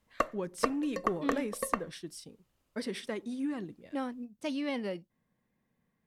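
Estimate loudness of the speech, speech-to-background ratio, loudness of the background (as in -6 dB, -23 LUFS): -37.0 LUFS, -1.0 dB, -36.0 LUFS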